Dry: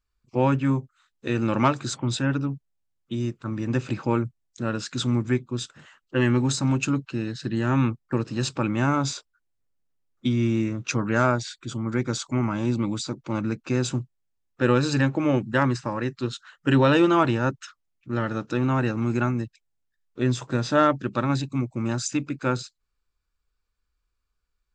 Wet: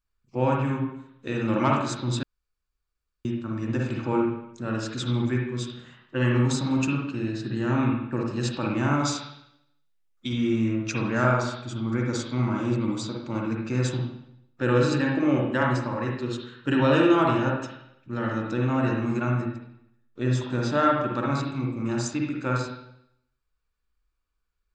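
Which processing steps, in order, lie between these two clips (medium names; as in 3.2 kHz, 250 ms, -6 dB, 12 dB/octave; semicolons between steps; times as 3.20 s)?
8.99–10.33 s: tilt shelf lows -5 dB, about 830 Hz; reverberation RT60 0.75 s, pre-delay 49 ms, DRR -1 dB; 2.23–3.25 s: room tone; trim -4.5 dB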